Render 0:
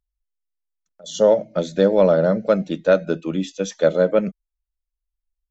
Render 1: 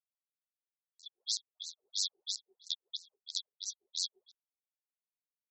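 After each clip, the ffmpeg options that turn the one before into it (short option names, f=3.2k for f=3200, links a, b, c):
-af "acrusher=bits=4:dc=4:mix=0:aa=0.000001,afftfilt=real='re*(1-between(b*sr/4096,290,3300))':imag='im*(1-between(b*sr/4096,290,3300))':win_size=4096:overlap=0.75,afftfilt=real='re*between(b*sr/1024,510*pow(5800/510,0.5+0.5*sin(2*PI*3*pts/sr))/1.41,510*pow(5800/510,0.5+0.5*sin(2*PI*3*pts/sr))*1.41)':imag='im*between(b*sr/1024,510*pow(5800/510,0.5+0.5*sin(2*PI*3*pts/sr))/1.41,510*pow(5800/510,0.5+0.5*sin(2*PI*3*pts/sr))*1.41)':win_size=1024:overlap=0.75"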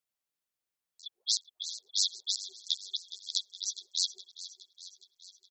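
-af "aecho=1:1:416|832|1248|1664|2080|2496:0.188|0.113|0.0678|0.0407|0.0244|0.0146,volume=5.5dB"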